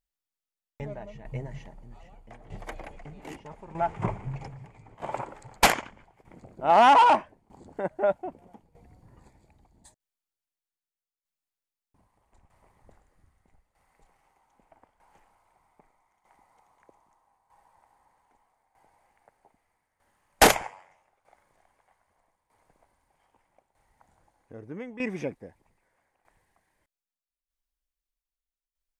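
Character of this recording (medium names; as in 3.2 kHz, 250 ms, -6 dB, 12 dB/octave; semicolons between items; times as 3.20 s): tremolo saw down 0.8 Hz, depth 75%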